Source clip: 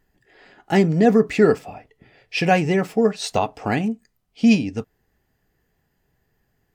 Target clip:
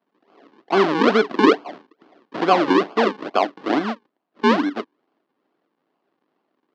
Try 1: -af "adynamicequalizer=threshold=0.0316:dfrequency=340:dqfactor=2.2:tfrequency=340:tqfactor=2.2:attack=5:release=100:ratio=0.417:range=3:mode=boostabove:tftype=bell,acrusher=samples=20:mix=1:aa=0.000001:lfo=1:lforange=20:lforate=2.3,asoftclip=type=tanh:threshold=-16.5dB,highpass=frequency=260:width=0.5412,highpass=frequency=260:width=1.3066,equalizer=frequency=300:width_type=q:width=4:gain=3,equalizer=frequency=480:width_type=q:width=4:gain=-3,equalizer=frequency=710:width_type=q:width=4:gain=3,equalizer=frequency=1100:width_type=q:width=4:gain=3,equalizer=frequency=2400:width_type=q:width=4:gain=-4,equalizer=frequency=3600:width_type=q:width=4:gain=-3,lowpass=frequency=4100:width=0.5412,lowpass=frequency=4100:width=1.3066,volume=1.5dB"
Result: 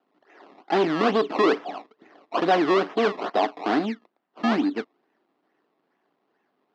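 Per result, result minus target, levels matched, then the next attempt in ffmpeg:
sample-and-hold swept by an LFO: distortion −11 dB; soft clipping: distortion +9 dB
-af "adynamicequalizer=threshold=0.0316:dfrequency=340:dqfactor=2.2:tfrequency=340:tqfactor=2.2:attack=5:release=100:ratio=0.417:range=3:mode=boostabove:tftype=bell,acrusher=samples=46:mix=1:aa=0.000001:lfo=1:lforange=46:lforate=2.3,asoftclip=type=tanh:threshold=-16.5dB,highpass=frequency=260:width=0.5412,highpass=frequency=260:width=1.3066,equalizer=frequency=300:width_type=q:width=4:gain=3,equalizer=frequency=480:width_type=q:width=4:gain=-3,equalizer=frequency=710:width_type=q:width=4:gain=3,equalizer=frequency=1100:width_type=q:width=4:gain=3,equalizer=frequency=2400:width_type=q:width=4:gain=-4,equalizer=frequency=3600:width_type=q:width=4:gain=-3,lowpass=frequency=4100:width=0.5412,lowpass=frequency=4100:width=1.3066,volume=1.5dB"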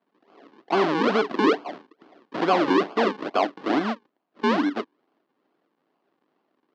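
soft clipping: distortion +9 dB
-af "adynamicequalizer=threshold=0.0316:dfrequency=340:dqfactor=2.2:tfrequency=340:tqfactor=2.2:attack=5:release=100:ratio=0.417:range=3:mode=boostabove:tftype=bell,acrusher=samples=46:mix=1:aa=0.000001:lfo=1:lforange=46:lforate=2.3,asoftclip=type=tanh:threshold=-7.5dB,highpass=frequency=260:width=0.5412,highpass=frequency=260:width=1.3066,equalizer=frequency=300:width_type=q:width=4:gain=3,equalizer=frequency=480:width_type=q:width=4:gain=-3,equalizer=frequency=710:width_type=q:width=4:gain=3,equalizer=frequency=1100:width_type=q:width=4:gain=3,equalizer=frequency=2400:width_type=q:width=4:gain=-4,equalizer=frequency=3600:width_type=q:width=4:gain=-3,lowpass=frequency=4100:width=0.5412,lowpass=frequency=4100:width=1.3066,volume=1.5dB"

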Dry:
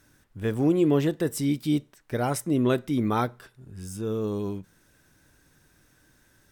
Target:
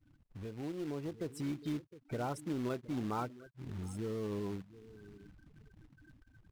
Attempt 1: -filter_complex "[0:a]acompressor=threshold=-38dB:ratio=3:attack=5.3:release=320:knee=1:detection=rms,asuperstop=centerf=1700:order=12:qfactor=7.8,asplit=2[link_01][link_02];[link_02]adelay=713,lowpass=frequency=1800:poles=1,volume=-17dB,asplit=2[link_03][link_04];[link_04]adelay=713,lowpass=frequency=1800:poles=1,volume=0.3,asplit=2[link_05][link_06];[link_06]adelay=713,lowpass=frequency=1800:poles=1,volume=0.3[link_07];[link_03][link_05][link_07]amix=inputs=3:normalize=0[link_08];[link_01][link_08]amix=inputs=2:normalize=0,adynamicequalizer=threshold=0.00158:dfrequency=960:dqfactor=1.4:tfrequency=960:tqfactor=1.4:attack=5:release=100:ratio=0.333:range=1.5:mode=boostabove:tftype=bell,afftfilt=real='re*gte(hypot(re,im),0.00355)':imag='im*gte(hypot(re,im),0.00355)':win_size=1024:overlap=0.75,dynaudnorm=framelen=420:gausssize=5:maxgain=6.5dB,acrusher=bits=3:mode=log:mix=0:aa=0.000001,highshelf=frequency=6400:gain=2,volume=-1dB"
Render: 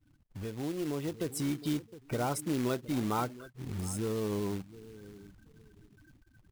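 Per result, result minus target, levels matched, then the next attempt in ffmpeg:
8,000 Hz band +8.0 dB; downward compressor: peak gain reduction −5 dB
-filter_complex "[0:a]acompressor=threshold=-38dB:ratio=3:attack=5.3:release=320:knee=1:detection=rms,asuperstop=centerf=1700:order=12:qfactor=7.8,asplit=2[link_01][link_02];[link_02]adelay=713,lowpass=frequency=1800:poles=1,volume=-17dB,asplit=2[link_03][link_04];[link_04]adelay=713,lowpass=frequency=1800:poles=1,volume=0.3,asplit=2[link_05][link_06];[link_06]adelay=713,lowpass=frequency=1800:poles=1,volume=0.3[link_07];[link_03][link_05][link_07]amix=inputs=3:normalize=0[link_08];[link_01][link_08]amix=inputs=2:normalize=0,adynamicequalizer=threshold=0.00158:dfrequency=960:dqfactor=1.4:tfrequency=960:tqfactor=1.4:attack=5:release=100:ratio=0.333:range=1.5:mode=boostabove:tftype=bell,afftfilt=real='re*gte(hypot(re,im),0.00355)':imag='im*gte(hypot(re,im),0.00355)':win_size=1024:overlap=0.75,dynaudnorm=framelen=420:gausssize=5:maxgain=6.5dB,acrusher=bits=3:mode=log:mix=0:aa=0.000001,highshelf=frequency=6400:gain=-10,volume=-1dB"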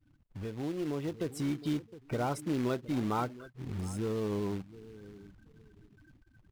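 downward compressor: peak gain reduction −5 dB
-filter_complex "[0:a]acompressor=threshold=-45.5dB:ratio=3:attack=5.3:release=320:knee=1:detection=rms,asuperstop=centerf=1700:order=12:qfactor=7.8,asplit=2[link_01][link_02];[link_02]adelay=713,lowpass=frequency=1800:poles=1,volume=-17dB,asplit=2[link_03][link_04];[link_04]adelay=713,lowpass=frequency=1800:poles=1,volume=0.3,asplit=2[link_05][link_06];[link_06]adelay=713,lowpass=frequency=1800:poles=1,volume=0.3[link_07];[link_03][link_05][link_07]amix=inputs=3:normalize=0[link_08];[link_01][link_08]amix=inputs=2:normalize=0,adynamicequalizer=threshold=0.00158:dfrequency=960:dqfactor=1.4:tfrequency=960:tqfactor=1.4:attack=5:release=100:ratio=0.333:range=1.5:mode=boostabove:tftype=bell,afftfilt=real='re*gte(hypot(re,im),0.00355)':imag='im*gte(hypot(re,im),0.00355)':win_size=1024:overlap=0.75,dynaudnorm=framelen=420:gausssize=5:maxgain=6.5dB,acrusher=bits=3:mode=log:mix=0:aa=0.000001,highshelf=frequency=6400:gain=-10,volume=-1dB"

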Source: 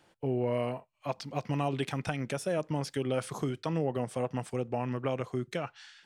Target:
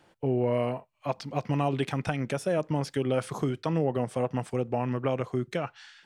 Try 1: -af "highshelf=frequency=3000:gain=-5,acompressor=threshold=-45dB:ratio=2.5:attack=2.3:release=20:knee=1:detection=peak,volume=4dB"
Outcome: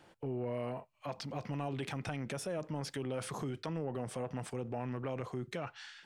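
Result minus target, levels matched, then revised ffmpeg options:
downward compressor: peak gain reduction +12.5 dB
-af "highshelf=frequency=3000:gain=-5,volume=4dB"

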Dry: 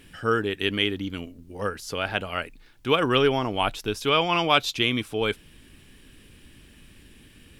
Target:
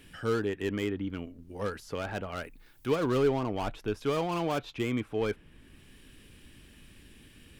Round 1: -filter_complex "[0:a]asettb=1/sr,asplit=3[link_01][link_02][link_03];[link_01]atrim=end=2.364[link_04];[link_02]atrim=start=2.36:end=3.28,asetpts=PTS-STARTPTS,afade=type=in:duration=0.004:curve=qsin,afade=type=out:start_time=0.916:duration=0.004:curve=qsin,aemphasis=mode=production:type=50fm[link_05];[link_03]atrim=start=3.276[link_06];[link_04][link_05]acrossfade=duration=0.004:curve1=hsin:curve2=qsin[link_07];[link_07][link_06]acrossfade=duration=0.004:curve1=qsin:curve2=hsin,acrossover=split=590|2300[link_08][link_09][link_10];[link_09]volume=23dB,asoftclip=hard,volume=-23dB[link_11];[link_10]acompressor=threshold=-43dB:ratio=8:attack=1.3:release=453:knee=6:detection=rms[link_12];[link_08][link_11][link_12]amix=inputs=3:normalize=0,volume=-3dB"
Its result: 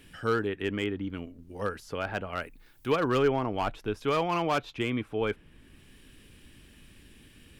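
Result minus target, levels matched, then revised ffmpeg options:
gain into a clipping stage and back: distortion −7 dB
-filter_complex "[0:a]asettb=1/sr,asplit=3[link_01][link_02][link_03];[link_01]atrim=end=2.364[link_04];[link_02]atrim=start=2.36:end=3.28,asetpts=PTS-STARTPTS,afade=type=in:duration=0.004:curve=qsin,afade=type=out:start_time=0.916:duration=0.004:curve=qsin,aemphasis=mode=production:type=50fm[link_05];[link_03]atrim=start=3.276[link_06];[link_04][link_05]acrossfade=duration=0.004:curve1=hsin:curve2=qsin[link_07];[link_07][link_06]acrossfade=duration=0.004:curve1=qsin:curve2=hsin,acrossover=split=590|2300[link_08][link_09][link_10];[link_09]volume=33dB,asoftclip=hard,volume=-33dB[link_11];[link_10]acompressor=threshold=-43dB:ratio=8:attack=1.3:release=453:knee=6:detection=rms[link_12];[link_08][link_11][link_12]amix=inputs=3:normalize=0,volume=-3dB"

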